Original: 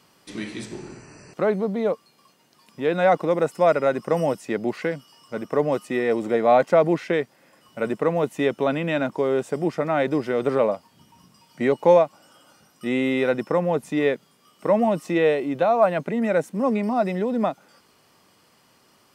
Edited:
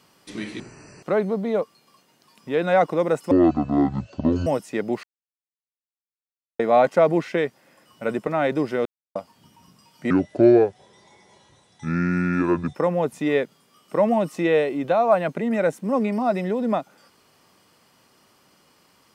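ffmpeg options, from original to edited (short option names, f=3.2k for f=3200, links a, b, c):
-filter_complex "[0:a]asplit=11[a][b][c][d][e][f][g][h][i][j][k];[a]atrim=end=0.602[l];[b]atrim=start=0.908:end=3.624[m];[c]atrim=start=3.62:end=4.22,asetpts=PTS-STARTPTS,asetrate=22932,aresample=44100[n];[d]atrim=start=4.216:end=4.79,asetpts=PTS-STARTPTS,afade=t=out:st=0.57:d=0.004:c=hsin[o];[e]atrim=start=4.79:end=6.35,asetpts=PTS-STARTPTS,volume=0[p];[f]atrim=start=6.35:end=8.032,asetpts=PTS-STARTPTS,afade=t=in:d=0.004:c=hsin[q];[g]atrim=start=9.828:end=10.41,asetpts=PTS-STARTPTS,afade=t=out:st=0.578:d=0.004:c=hsin[r];[h]atrim=start=10.41:end=10.71,asetpts=PTS-STARTPTS,volume=0[s];[i]atrim=start=10.71:end=11.664,asetpts=PTS-STARTPTS,afade=t=in:d=0.004:c=hsin[t];[j]atrim=start=11.66:end=13.46,asetpts=PTS-STARTPTS,asetrate=29988,aresample=44100,atrim=end_sample=116735,asetpts=PTS-STARTPTS[u];[k]atrim=start=13.456[v];[l][m]acrossfade=d=0.004:c1=hsin:c2=hsin[w];[w][n]acrossfade=d=0.004:c1=hsin:c2=hsin[x];[o][p][q]concat=n=3:v=0:a=1[y];[x][y]acrossfade=d=0.004:c1=hsin:c2=hsin[z];[r][s][t]concat=n=3:v=0:a=1[aa];[z][aa]acrossfade=d=0.004:c1=hsin:c2=hsin[ab];[ab][u]acrossfade=d=0.004:c1=hsin:c2=hsin[ac];[ac][v]acrossfade=d=0.004:c1=hsin:c2=hsin"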